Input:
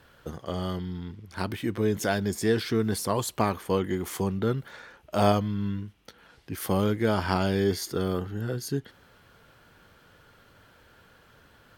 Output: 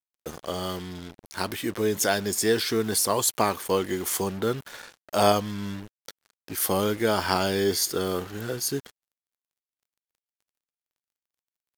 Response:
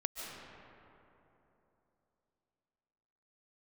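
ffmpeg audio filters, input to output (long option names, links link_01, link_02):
-af "bass=frequency=250:gain=-9,treble=frequency=4000:gain=8,acrusher=bits=6:mix=0:aa=0.5,volume=3dB"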